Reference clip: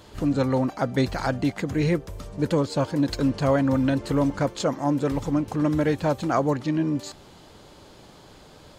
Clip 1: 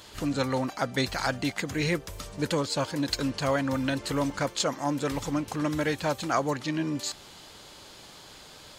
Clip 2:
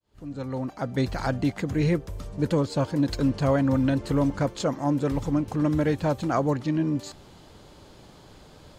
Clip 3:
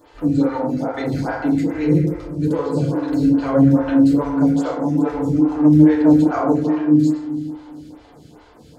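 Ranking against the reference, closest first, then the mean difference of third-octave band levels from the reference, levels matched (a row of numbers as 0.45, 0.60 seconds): 2, 1, 3; 2.0, 5.5, 8.5 decibels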